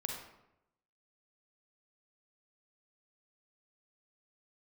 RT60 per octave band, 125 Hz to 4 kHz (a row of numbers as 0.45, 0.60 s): 1.0, 0.90, 0.90, 0.80, 0.70, 0.55 s